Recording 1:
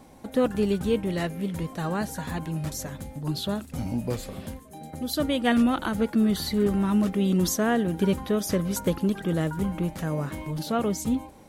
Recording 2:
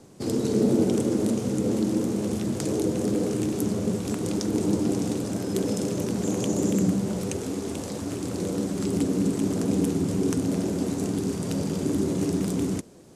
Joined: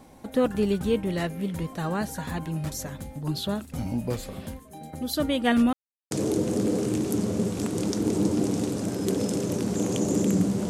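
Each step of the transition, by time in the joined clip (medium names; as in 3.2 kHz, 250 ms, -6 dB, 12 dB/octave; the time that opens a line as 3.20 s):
recording 1
5.73–6.11 s: mute
6.11 s: go over to recording 2 from 2.59 s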